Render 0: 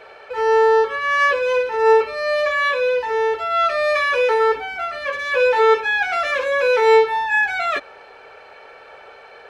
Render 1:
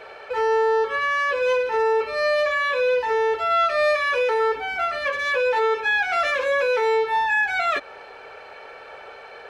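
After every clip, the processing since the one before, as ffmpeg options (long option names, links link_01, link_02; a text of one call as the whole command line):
ffmpeg -i in.wav -af "alimiter=limit=-15.5dB:level=0:latency=1:release=196,volume=1.5dB" out.wav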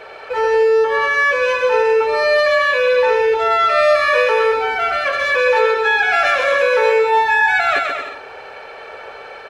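ffmpeg -i in.wav -af "aecho=1:1:130|227.5|300.6|355.5|396.6:0.631|0.398|0.251|0.158|0.1,volume=4.5dB" out.wav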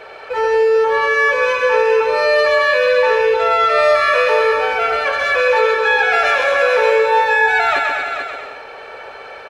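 ffmpeg -i in.wav -af "aecho=1:1:438:0.422" out.wav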